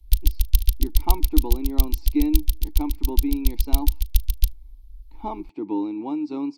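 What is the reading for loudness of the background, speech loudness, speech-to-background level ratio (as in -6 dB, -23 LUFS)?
-25.5 LUFS, -29.5 LUFS, -4.0 dB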